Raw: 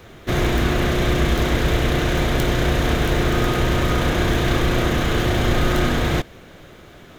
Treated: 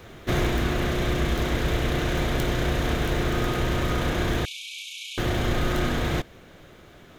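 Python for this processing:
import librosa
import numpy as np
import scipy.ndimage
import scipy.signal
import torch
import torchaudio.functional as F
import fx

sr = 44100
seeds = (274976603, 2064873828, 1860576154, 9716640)

y = fx.rider(x, sr, range_db=10, speed_s=0.5)
y = fx.brickwall_bandpass(y, sr, low_hz=2200.0, high_hz=12000.0, at=(4.45, 5.18))
y = y * 10.0 ** (-5.5 / 20.0)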